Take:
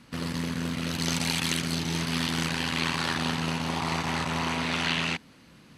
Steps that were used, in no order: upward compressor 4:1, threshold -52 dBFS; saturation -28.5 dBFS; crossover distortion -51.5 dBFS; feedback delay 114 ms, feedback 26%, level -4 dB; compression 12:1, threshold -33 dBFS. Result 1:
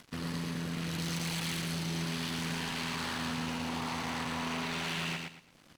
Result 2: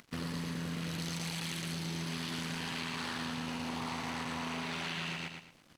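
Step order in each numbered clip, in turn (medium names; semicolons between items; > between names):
saturation > compression > crossover distortion > feedback delay > upward compressor; upward compressor > crossover distortion > feedback delay > compression > saturation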